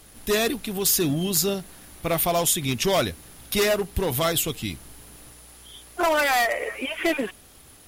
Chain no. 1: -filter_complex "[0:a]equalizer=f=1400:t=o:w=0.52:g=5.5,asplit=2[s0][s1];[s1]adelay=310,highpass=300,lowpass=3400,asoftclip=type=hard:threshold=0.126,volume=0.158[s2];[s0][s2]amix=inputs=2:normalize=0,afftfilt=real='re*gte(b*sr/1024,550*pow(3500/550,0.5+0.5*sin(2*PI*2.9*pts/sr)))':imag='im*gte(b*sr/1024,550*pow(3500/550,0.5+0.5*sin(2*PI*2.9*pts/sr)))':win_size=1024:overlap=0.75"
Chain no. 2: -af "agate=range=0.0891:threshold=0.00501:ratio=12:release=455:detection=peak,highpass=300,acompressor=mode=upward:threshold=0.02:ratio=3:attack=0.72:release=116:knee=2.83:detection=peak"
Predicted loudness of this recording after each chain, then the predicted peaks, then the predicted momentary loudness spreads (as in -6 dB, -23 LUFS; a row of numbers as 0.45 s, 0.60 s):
-25.5 LUFS, -24.0 LUFS; -10.0 dBFS, -9.5 dBFS; 20 LU, 20 LU